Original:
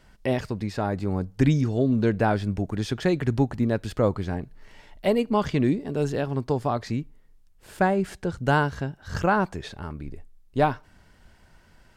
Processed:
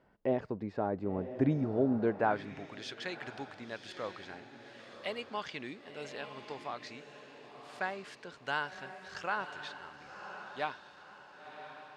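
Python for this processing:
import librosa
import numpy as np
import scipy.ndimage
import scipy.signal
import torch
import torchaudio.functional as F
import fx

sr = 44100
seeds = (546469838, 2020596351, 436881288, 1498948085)

y = fx.high_shelf(x, sr, hz=8100.0, db=-9.5)
y = fx.echo_diffused(y, sr, ms=1044, feedback_pct=42, wet_db=-9.0)
y = fx.filter_sweep_bandpass(y, sr, from_hz=500.0, to_hz=3300.0, start_s=1.91, end_s=2.87, q=0.72)
y = F.gain(torch.from_numpy(y), -4.0).numpy()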